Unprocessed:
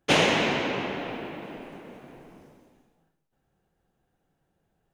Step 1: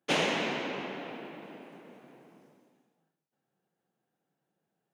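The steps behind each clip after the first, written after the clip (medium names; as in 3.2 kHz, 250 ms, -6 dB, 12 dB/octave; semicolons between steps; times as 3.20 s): high-pass 150 Hz 24 dB/octave; trim -7 dB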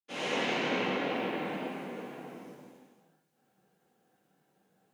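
fade-in on the opening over 1.43 s; overload inside the chain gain 33 dB; gated-style reverb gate 150 ms flat, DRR -7 dB; trim +3.5 dB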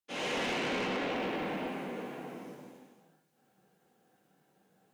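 saturation -31 dBFS, distortion -11 dB; trim +2 dB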